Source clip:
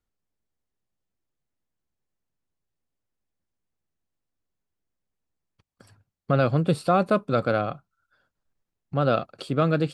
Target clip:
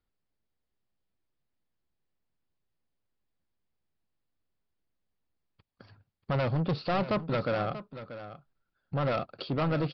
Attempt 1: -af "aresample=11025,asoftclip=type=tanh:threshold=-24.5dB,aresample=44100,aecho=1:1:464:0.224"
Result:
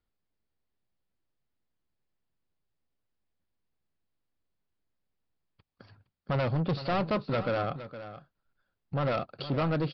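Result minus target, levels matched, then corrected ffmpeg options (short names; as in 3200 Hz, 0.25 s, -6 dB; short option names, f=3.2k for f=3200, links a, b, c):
echo 0.171 s early
-af "aresample=11025,asoftclip=type=tanh:threshold=-24.5dB,aresample=44100,aecho=1:1:635:0.224"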